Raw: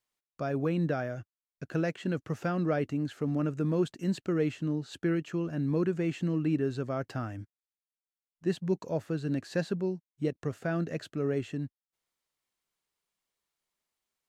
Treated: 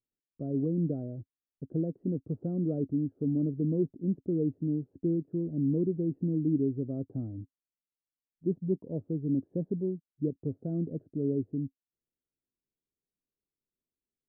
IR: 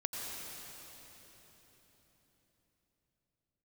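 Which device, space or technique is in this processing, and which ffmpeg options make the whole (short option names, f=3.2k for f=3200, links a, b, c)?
under water: -af "lowpass=f=440:w=0.5412,lowpass=f=440:w=1.3066,equalizer=f=270:t=o:w=0.21:g=5"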